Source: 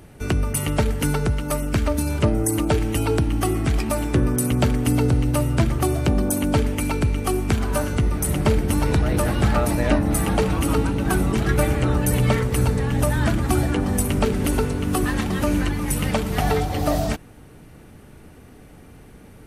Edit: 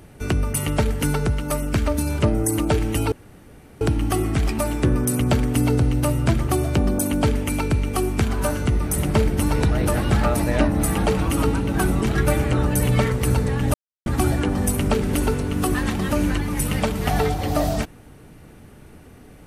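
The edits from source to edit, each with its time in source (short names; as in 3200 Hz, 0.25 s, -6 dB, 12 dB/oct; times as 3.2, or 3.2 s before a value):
3.12 insert room tone 0.69 s
13.05–13.37 mute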